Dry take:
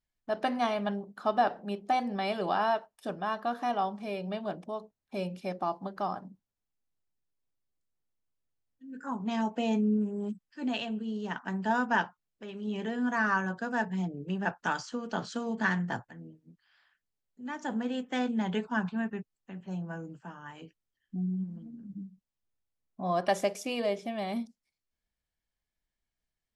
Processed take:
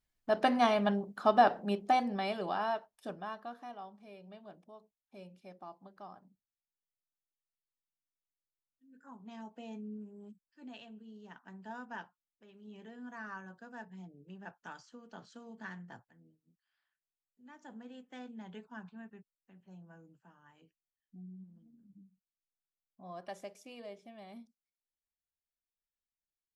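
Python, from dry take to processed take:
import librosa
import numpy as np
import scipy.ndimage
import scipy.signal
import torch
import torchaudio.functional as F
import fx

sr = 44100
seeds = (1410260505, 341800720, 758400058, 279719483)

y = fx.gain(x, sr, db=fx.line((1.75, 2.0), (2.5, -6.0), (3.09, -6.0), (3.75, -17.0)))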